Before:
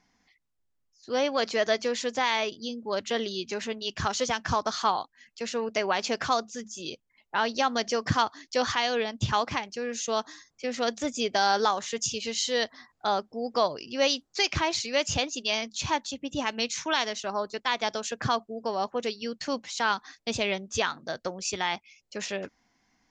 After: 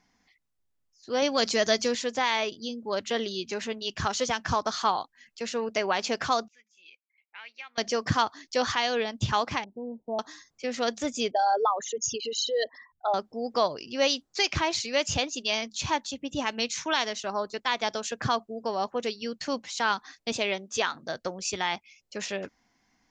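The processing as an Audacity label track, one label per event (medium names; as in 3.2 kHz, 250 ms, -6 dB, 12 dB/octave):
1.220000	1.950000	tone controls bass +8 dB, treble +11 dB
6.480000	7.780000	band-pass filter 2.3 kHz, Q 8.6
9.640000	10.190000	rippled Chebyshev low-pass 980 Hz, ripple 6 dB
11.310000	13.140000	resonances exaggerated exponent 3
20.320000	20.950000	high-pass 220 Hz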